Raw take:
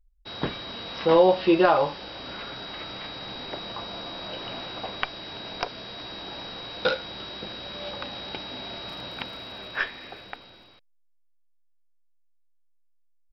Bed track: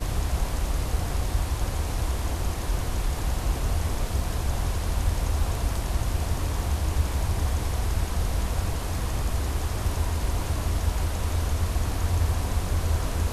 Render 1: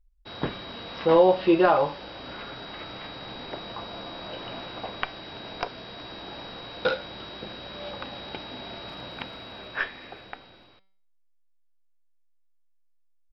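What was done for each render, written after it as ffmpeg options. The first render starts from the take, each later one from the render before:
-af "lowpass=f=3.1k:p=1,bandreject=f=192.2:t=h:w=4,bandreject=f=384.4:t=h:w=4,bandreject=f=576.6:t=h:w=4,bandreject=f=768.8:t=h:w=4,bandreject=f=961:t=h:w=4,bandreject=f=1.1532k:t=h:w=4,bandreject=f=1.3454k:t=h:w=4,bandreject=f=1.5376k:t=h:w=4,bandreject=f=1.7298k:t=h:w=4,bandreject=f=1.922k:t=h:w=4,bandreject=f=2.1142k:t=h:w=4,bandreject=f=2.3064k:t=h:w=4,bandreject=f=2.4986k:t=h:w=4,bandreject=f=2.6908k:t=h:w=4,bandreject=f=2.883k:t=h:w=4,bandreject=f=3.0752k:t=h:w=4,bandreject=f=3.2674k:t=h:w=4,bandreject=f=3.4596k:t=h:w=4,bandreject=f=3.6518k:t=h:w=4,bandreject=f=3.844k:t=h:w=4,bandreject=f=4.0362k:t=h:w=4,bandreject=f=4.2284k:t=h:w=4,bandreject=f=4.4206k:t=h:w=4,bandreject=f=4.6128k:t=h:w=4,bandreject=f=4.805k:t=h:w=4,bandreject=f=4.9972k:t=h:w=4,bandreject=f=5.1894k:t=h:w=4,bandreject=f=5.3816k:t=h:w=4"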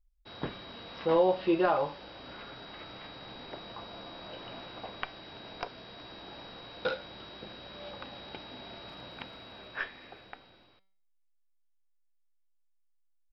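-af "volume=-7dB"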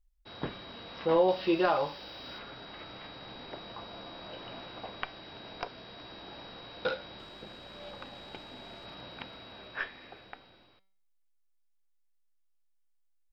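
-filter_complex "[0:a]asettb=1/sr,asplit=3[a][b][c];[a]atrim=end=1.284[d];[b]atrim=start=1.28:end=2.39,asetpts=PTS-STARTPTS,afade=t=in:d=0.004:c=qsin,afade=t=out:st=1.106:d=0.004:c=qsin,aemphasis=mode=production:type=75fm[e];[c]atrim=start=2.386[f];[d][e]acrossfade=d=0.004:c1=hsin:c2=qsin[g];[g][f]acrossfade=d=0.004:c1=qsin:c2=hsin,asettb=1/sr,asplit=3[h][i][j];[h]atrim=end=7.194[k];[i]atrim=start=7.19:end=8.86,asetpts=PTS-STARTPTS,afade=t=in:d=0.004:c=qsin,afade=t=out:st=1.666:d=0.004:c=qsin,aeval=exprs='if(lt(val(0),0),0.708*val(0),val(0))':c=same[l];[j]atrim=start=8.856[m];[k][l]acrossfade=d=0.004:c1=hsin:c2=qsin[n];[n][m]acrossfade=d=0.004:c1=qsin:c2=hsin"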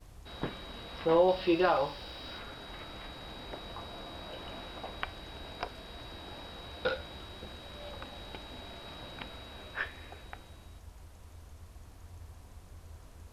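-filter_complex "[1:a]volume=-25.5dB[a];[0:a][a]amix=inputs=2:normalize=0"

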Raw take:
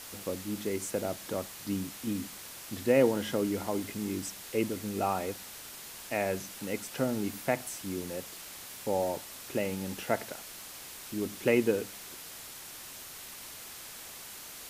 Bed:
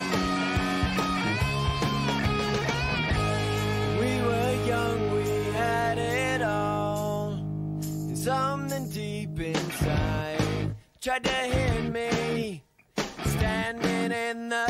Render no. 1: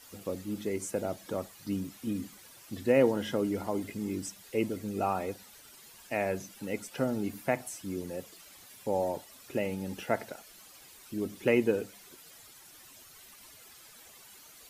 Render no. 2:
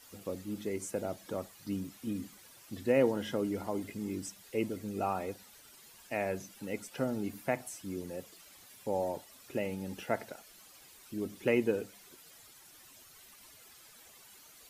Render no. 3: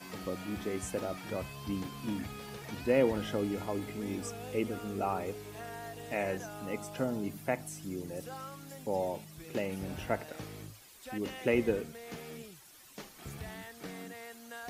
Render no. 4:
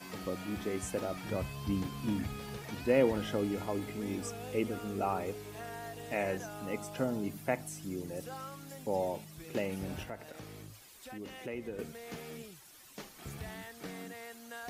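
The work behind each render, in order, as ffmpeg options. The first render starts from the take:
-af "afftdn=nr=12:nf=-46"
-af "volume=-3dB"
-filter_complex "[1:a]volume=-18dB[a];[0:a][a]amix=inputs=2:normalize=0"
-filter_complex "[0:a]asettb=1/sr,asplit=3[a][b][c];[a]atrim=end=1.164[d];[b]atrim=start=1.16:end=2.62,asetpts=PTS-STARTPTS,afade=t=in:d=0.004:c=qsin,afade=t=out:st=1.456:d=0.004:c=qsin,lowshelf=f=160:g=7.5[e];[c]atrim=start=2.616[f];[d][e]acrossfade=d=0.004:c1=hsin:c2=qsin[g];[g][f]acrossfade=d=0.004:c1=qsin:c2=hsin,asettb=1/sr,asplit=3[h][i][j];[h]atrim=end=10.034[k];[i]atrim=start=10.03:end=11.79,asetpts=PTS-STARTPTS,afade=t=in:d=0.004:c=qsin,afade=t=out:st=1.756:d=0.004:c=qsin,acompressor=threshold=-46dB:ratio=2:attack=3.2:release=140:knee=1:detection=peak[l];[j]atrim=start=11.786[m];[k][l]acrossfade=d=0.004:c1=hsin:c2=qsin[n];[n][m]acrossfade=d=0.004:c1=qsin:c2=hsin"

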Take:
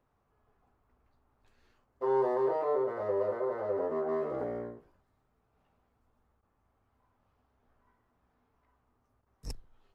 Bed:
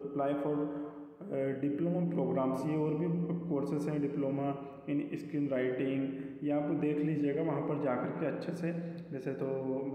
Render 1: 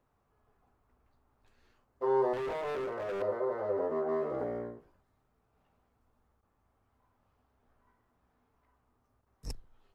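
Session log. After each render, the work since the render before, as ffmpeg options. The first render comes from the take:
-filter_complex "[0:a]asettb=1/sr,asplit=3[a][b][c];[a]atrim=end=2.334[d];[b]atrim=start=2.33:end=3.22,asetpts=PTS-STARTPTS,afade=t=in:d=0.004:c=qsin,afade=t=out:st=0.886:d=0.004:c=qsin,asoftclip=type=hard:threshold=-33.5dB[e];[c]atrim=start=3.216[f];[d][e]acrossfade=d=0.004:c1=hsin:c2=qsin[g];[g][f]acrossfade=d=0.004:c1=qsin:c2=hsin"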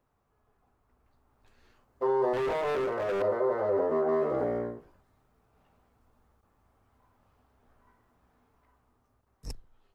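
-af "dynaudnorm=f=240:g=11:m=6dB,alimiter=limit=-19dB:level=0:latency=1:release=19"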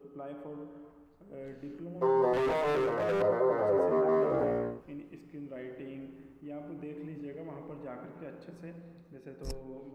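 -filter_complex "[1:a]volume=-10.5dB[a];[0:a][a]amix=inputs=2:normalize=0"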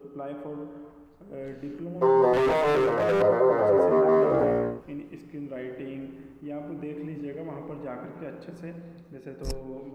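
-af "volume=6.5dB"

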